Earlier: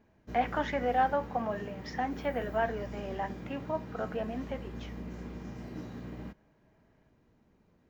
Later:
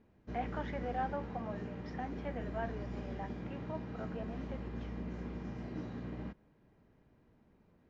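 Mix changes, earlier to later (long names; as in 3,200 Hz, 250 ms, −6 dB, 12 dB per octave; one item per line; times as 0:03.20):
speech −9.5 dB
master: add high-frequency loss of the air 120 metres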